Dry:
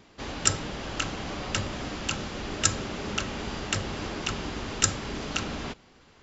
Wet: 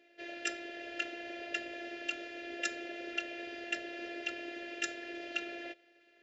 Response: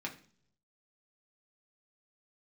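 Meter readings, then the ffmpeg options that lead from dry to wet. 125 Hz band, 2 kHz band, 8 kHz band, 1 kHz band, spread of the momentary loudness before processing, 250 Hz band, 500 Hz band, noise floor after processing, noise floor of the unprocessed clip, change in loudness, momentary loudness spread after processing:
under -35 dB, -3.5 dB, no reading, -12.0 dB, 9 LU, -9.5 dB, -7.0 dB, -66 dBFS, -57 dBFS, -9.5 dB, 6 LU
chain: -filter_complex "[0:a]afftfilt=real='hypot(re,im)*cos(PI*b)':imag='0':win_size=512:overlap=0.75,asplit=3[s0][s1][s2];[s0]bandpass=f=530:t=q:w=8,volume=1[s3];[s1]bandpass=f=1840:t=q:w=8,volume=0.501[s4];[s2]bandpass=f=2480:t=q:w=8,volume=0.355[s5];[s3][s4][s5]amix=inputs=3:normalize=0,volume=3.35"

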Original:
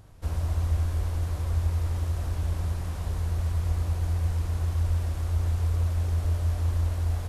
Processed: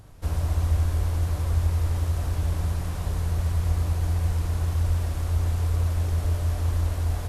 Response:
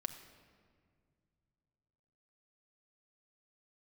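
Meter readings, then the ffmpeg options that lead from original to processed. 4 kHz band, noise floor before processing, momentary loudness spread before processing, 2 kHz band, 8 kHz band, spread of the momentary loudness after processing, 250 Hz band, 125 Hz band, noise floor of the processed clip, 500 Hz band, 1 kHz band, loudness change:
+4.0 dB, -33 dBFS, 3 LU, +3.5 dB, +4.5 dB, 3 LU, +4.0 dB, +2.0 dB, -31 dBFS, +3.5 dB, +3.5 dB, +2.0 dB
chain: -filter_complex "[0:a]asplit=2[s0][s1];[1:a]atrim=start_sample=2205,asetrate=34839,aresample=44100,highshelf=f=9400:g=7.5[s2];[s1][s2]afir=irnorm=-1:irlink=0,volume=0.531[s3];[s0][s3]amix=inputs=2:normalize=0"

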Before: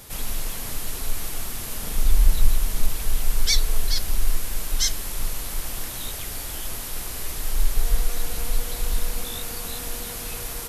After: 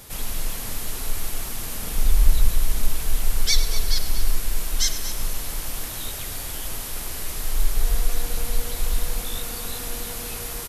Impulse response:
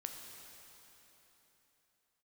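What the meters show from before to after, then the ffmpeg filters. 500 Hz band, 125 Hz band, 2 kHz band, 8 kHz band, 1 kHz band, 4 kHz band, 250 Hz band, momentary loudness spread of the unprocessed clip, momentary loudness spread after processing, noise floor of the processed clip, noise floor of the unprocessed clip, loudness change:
+1.0 dB, +0.5 dB, +0.5 dB, +0.5 dB, +0.5 dB, +0.5 dB, +0.5 dB, 8 LU, 8 LU, -32 dBFS, -33 dBFS, +0.5 dB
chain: -filter_complex "[0:a]aecho=1:1:236:0.251,asplit=2[s0][s1];[1:a]atrim=start_sample=2205,adelay=101[s2];[s1][s2]afir=irnorm=-1:irlink=0,volume=0.355[s3];[s0][s3]amix=inputs=2:normalize=0"

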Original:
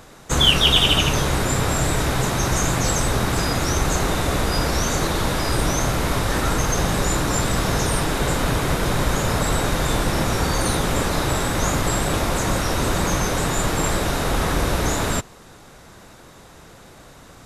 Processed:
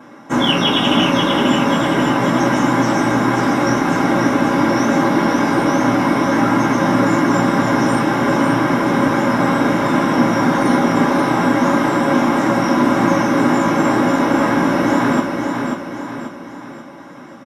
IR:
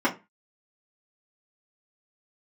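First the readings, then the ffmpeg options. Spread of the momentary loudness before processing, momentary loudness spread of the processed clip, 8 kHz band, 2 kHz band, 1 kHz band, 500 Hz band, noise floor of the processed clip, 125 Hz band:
4 LU, 4 LU, -8.0 dB, +5.5 dB, +8.0 dB, +6.5 dB, -35 dBFS, -0.5 dB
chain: -filter_complex "[0:a]aecho=1:1:537|1074|1611|2148|2685|3222:0.562|0.259|0.119|0.0547|0.0252|0.0116[s0];[1:a]atrim=start_sample=2205[s1];[s0][s1]afir=irnorm=-1:irlink=0,volume=0.316"

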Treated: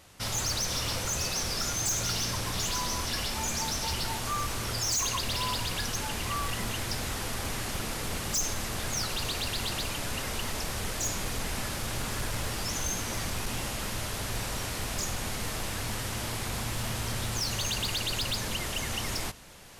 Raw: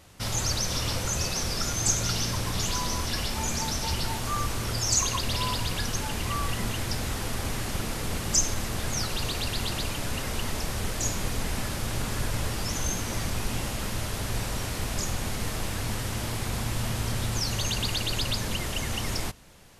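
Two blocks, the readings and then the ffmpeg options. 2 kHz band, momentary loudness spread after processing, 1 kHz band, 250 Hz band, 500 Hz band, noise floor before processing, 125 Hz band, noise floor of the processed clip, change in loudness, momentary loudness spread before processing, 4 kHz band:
-0.5 dB, 5 LU, -1.5 dB, -4.0 dB, -2.5 dB, -33 dBFS, -5.0 dB, -35 dBFS, -2.0 dB, 7 LU, -1.0 dB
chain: -af "lowshelf=f=420:g=-5,areverse,acompressor=mode=upward:threshold=0.00708:ratio=2.5,areverse,asoftclip=type=hard:threshold=0.0531"

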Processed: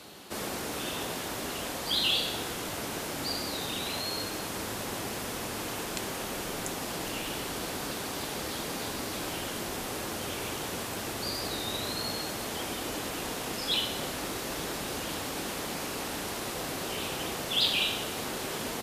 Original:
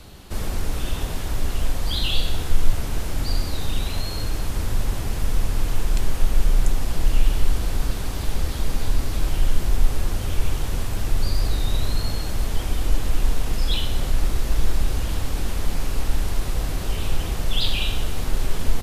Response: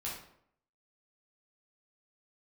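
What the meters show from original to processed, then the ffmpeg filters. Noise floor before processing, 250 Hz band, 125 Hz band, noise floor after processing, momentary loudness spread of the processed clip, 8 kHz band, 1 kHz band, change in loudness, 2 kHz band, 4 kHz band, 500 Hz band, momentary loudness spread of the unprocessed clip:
-28 dBFS, -3.5 dB, -17.0 dB, -36 dBFS, 6 LU, 0.0 dB, 0.0 dB, -5.5 dB, 0.0 dB, 0.0 dB, -0.5 dB, 4 LU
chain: -af "highpass=250"

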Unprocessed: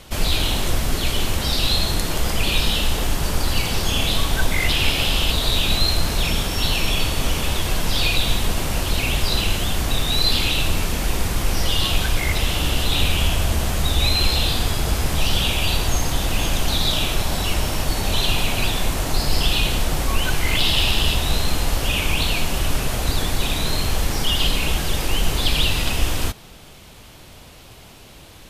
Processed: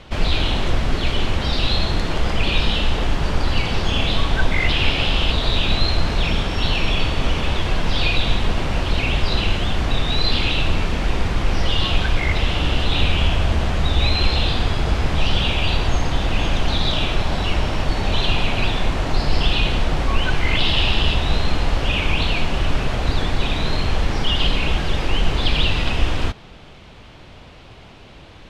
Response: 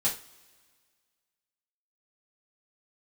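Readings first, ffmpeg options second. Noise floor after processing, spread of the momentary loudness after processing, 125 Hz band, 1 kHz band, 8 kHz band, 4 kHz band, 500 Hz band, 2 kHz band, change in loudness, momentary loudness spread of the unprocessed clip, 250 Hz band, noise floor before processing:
-42 dBFS, 4 LU, +2.0 dB, +2.0 dB, -12.5 dB, -1.5 dB, +2.0 dB, +1.0 dB, 0.0 dB, 5 LU, +2.0 dB, -43 dBFS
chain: -af "lowpass=3400,volume=1.26"

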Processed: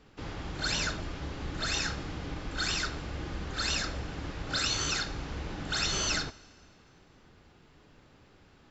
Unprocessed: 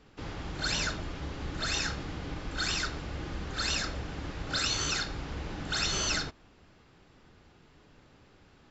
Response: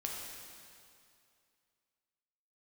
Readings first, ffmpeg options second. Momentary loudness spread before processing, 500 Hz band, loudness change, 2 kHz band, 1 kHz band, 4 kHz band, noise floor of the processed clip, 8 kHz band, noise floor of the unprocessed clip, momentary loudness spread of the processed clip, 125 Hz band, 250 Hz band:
11 LU, 0.0 dB, 0.0 dB, 0.0 dB, 0.0 dB, 0.0 dB, -60 dBFS, no reading, -60 dBFS, 11 LU, 0.0 dB, 0.0 dB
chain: -filter_complex "[0:a]asplit=2[s0][s1];[1:a]atrim=start_sample=2205,adelay=73[s2];[s1][s2]afir=irnorm=-1:irlink=0,volume=0.0794[s3];[s0][s3]amix=inputs=2:normalize=0"

